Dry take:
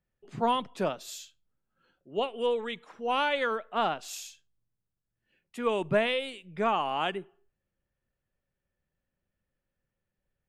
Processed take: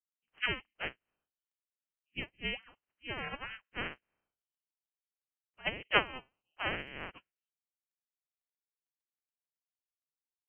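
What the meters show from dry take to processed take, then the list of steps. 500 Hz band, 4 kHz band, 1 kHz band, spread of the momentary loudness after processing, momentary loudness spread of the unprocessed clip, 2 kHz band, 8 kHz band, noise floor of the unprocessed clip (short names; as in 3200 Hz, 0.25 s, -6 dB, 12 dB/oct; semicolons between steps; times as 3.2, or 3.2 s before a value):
-14.5 dB, -3.5 dB, -12.5 dB, 15 LU, 14 LU, -1.0 dB, under -35 dB, under -85 dBFS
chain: spectral limiter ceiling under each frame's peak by 28 dB; inverted band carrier 3100 Hz; crackle 17/s -45 dBFS; upward expander 2.5:1, over -46 dBFS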